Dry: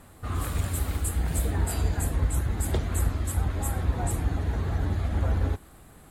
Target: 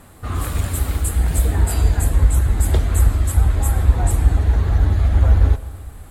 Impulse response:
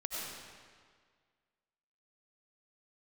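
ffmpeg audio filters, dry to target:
-filter_complex "[0:a]asubboost=boost=3.5:cutoff=85,asplit=2[link_01][link_02];[1:a]atrim=start_sample=2205,highshelf=frequency=8000:gain=7.5[link_03];[link_02][link_03]afir=irnorm=-1:irlink=0,volume=-15.5dB[link_04];[link_01][link_04]amix=inputs=2:normalize=0,volume=5dB"

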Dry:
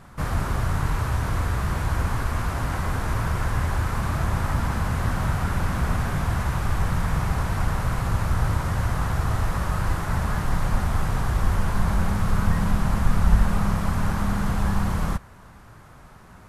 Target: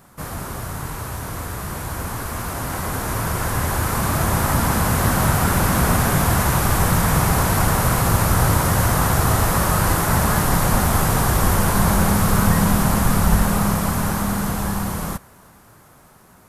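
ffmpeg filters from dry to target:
ffmpeg -i in.wav -af "aemphasis=mode=production:type=riaa,dynaudnorm=framelen=650:gausssize=11:maxgain=13dB,tiltshelf=frequency=740:gain=7" out.wav

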